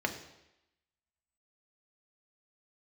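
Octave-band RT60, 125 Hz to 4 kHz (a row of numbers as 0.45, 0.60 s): 0.80, 0.85, 0.90, 0.90, 0.90, 0.90 s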